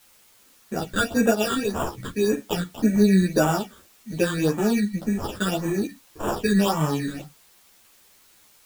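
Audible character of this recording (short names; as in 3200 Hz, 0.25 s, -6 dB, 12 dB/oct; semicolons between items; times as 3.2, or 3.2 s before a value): aliases and images of a low sample rate 2100 Hz, jitter 0%; phasing stages 8, 1.8 Hz, lowest notch 740–4500 Hz; a quantiser's noise floor 10-bit, dither triangular; a shimmering, thickened sound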